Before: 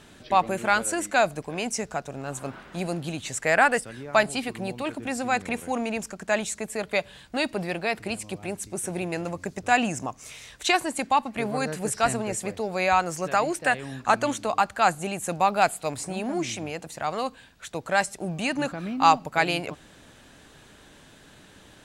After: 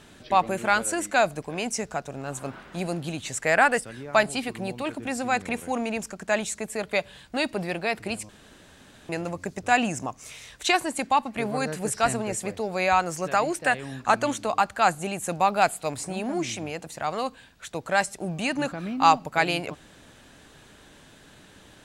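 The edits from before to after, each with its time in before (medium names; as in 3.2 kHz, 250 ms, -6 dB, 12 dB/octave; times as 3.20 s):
8.29–9.09 s: room tone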